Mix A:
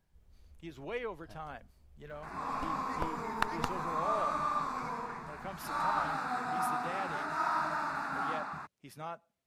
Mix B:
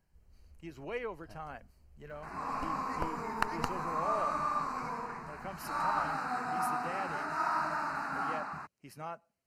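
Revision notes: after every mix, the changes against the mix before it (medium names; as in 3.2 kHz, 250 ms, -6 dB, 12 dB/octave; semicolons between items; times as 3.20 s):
master: add Butterworth band-stop 3.5 kHz, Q 4.7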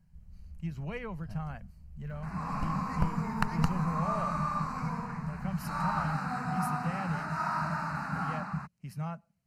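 master: add resonant low shelf 240 Hz +10 dB, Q 3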